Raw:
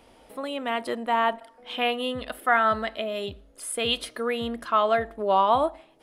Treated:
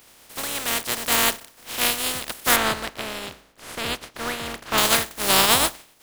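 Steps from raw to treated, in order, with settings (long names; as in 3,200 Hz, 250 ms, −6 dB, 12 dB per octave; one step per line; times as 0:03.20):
compressing power law on the bin magnitudes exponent 0.19
0:02.56–0:04.78: low-pass filter 2,200 Hz 6 dB per octave
level +3.5 dB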